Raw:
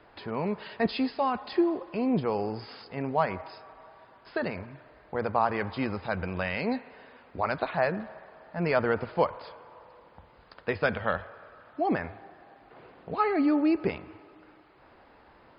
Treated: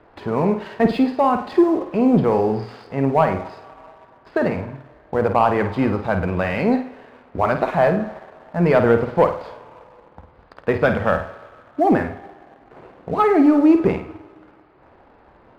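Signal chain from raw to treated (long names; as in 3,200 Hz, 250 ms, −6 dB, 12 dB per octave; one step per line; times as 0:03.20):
low-pass filter 1,100 Hz 6 dB per octave
leveller curve on the samples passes 1
flutter between parallel walls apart 8.8 metres, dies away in 0.37 s
level +8 dB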